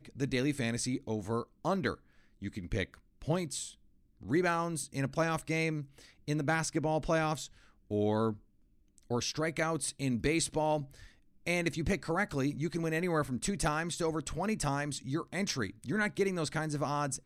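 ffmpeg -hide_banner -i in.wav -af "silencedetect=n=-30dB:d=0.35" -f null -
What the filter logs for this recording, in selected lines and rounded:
silence_start: 1.92
silence_end: 2.45 | silence_duration: 0.53
silence_start: 2.84
silence_end: 3.28 | silence_duration: 0.44
silence_start: 3.61
silence_end: 4.31 | silence_duration: 0.70
silence_start: 5.80
silence_end: 6.28 | silence_duration: 0.48
silence_start: 7.42
silence_end: 7.91 | silence_duration: 0.49
silence_start: 8.31
silence_end: 9.11 | silence_duration: 0.79
silence_start: 10.78
silence_end: 11.47 | silence_duration: 0.69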